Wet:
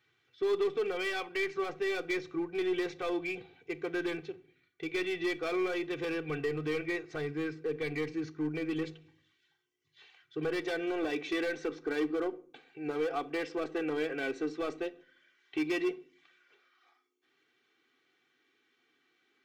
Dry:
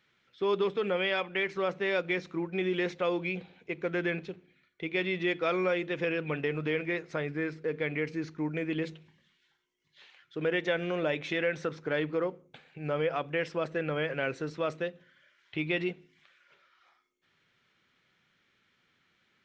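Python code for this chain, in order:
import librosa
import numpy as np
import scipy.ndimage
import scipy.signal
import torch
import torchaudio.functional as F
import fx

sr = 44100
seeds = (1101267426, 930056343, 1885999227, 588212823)

y = fx.filter_sweep_highpass(x, sr, from_hz=100.0, to_hz=250.0, start_s=10.15, end_s=10.89, q=1.9)
y = np.clip(y, -10.0 ** (-25.0 / 20.0), 10.0 ** (-25.0 / 20.0))
y = y + 0.86 * np.pad(y, (int(2.6 * sr / 1000.0), 0))[:len(y)]
y = fx.room_shoebox(y, sr, seeds[0], volume_m3=540.0, walls='furnished', distance_m=0.31)
y = F.gain(torch.from_numpy(y), -5.0).numpy()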